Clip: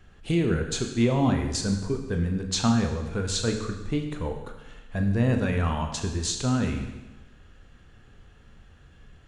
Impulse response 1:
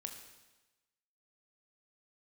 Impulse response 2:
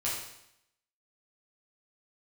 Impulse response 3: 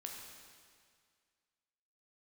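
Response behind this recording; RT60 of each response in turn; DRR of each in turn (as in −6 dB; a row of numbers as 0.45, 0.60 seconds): 1; 1.1, 0.75, 2.0 seconds; 4.0, −7.5, 0.0 decibels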